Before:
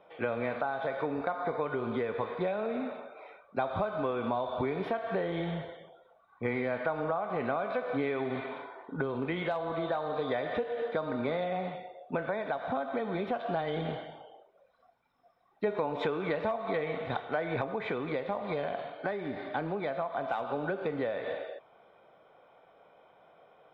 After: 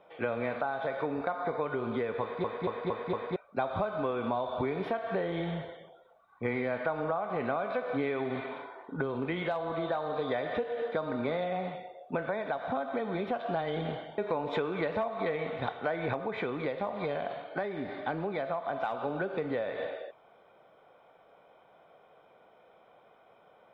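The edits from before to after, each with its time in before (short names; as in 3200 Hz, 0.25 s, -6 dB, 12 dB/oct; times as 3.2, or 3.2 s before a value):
2.21 stutter in place 0.23 s, 5 plays
14.18–15.66 cut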